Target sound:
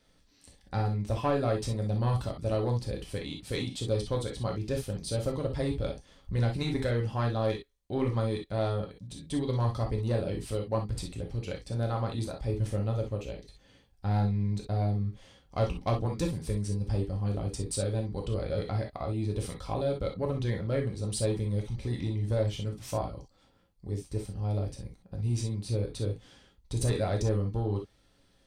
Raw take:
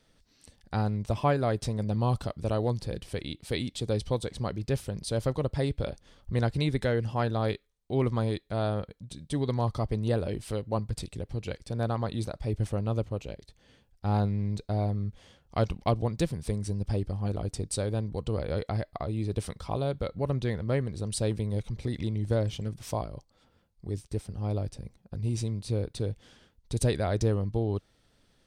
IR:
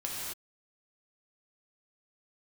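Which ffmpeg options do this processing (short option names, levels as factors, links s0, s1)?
-filter_complex "[0:a]asoftclip=type=tanh:threshold=0.119[s0];[1:a]atrim=start_sample=2205,atrim=end_sample=3087[s1];[s0][s1]afir=irnorm=-1:irlink=0"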